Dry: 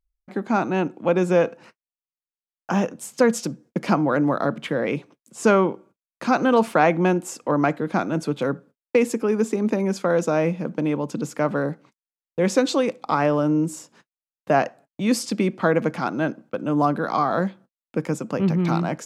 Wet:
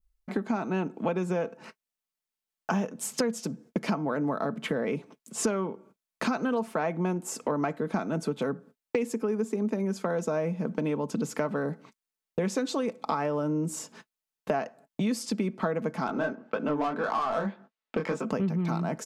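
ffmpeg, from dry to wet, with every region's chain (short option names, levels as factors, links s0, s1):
-filter_complex "[0:a]asettb=1/sr,asplit=3[s0][s1][s2];[s0]atrim=end=16.074[s3];[s1]atrim=start=16.07:end=18.3,asetpts=PTS-STARTPTS,afade=t=in:d=0.004:c=qsin,afade=t=out:st=2.226:d=0.004:c=qsin,asplit=2[s4][s5];[s5]highpass=f=720:p=1,volume=6.31,asoftclip=type=tanh:threshold=0.422[s6];[s4][s6]amix=inputs=2:normalize=0,lowpass=f=6500:p=1,volume=0.501,adynamicsmooth=sensitivity=1:basefreq=3800,flanger=delay=18:depth=7:speed=1.8[s7];[s2]atrim=start=18.296[s8];[s3][s7]acrossfade=d=0.004:c1=hsin:c2=qsin[s9];[s9][s8]acrossfade=d=0.004:c1=qsin:c2=hsin,adynamicequalizer=threshold=0.00891:dfrequency=3100:dqfactor=0.75:tfrequency=3100:tqfactor=0.75:attack=5:release=100:ratio=0.375:range=3.5:mode=cutabove:tftype=bell,aecho=1:1:4.6:0.41,acompressor=threshold=0.0282:ratio=5,volume=1.58"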